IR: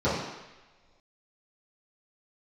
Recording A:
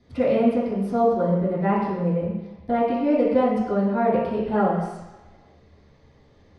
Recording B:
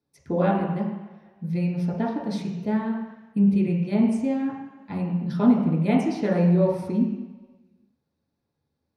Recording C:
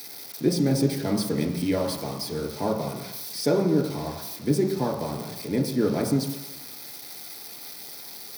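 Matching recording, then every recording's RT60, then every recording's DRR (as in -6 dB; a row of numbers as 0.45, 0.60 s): A; not exponential, not exponential, not exponential; -13.5, -4.5, 0.0 dB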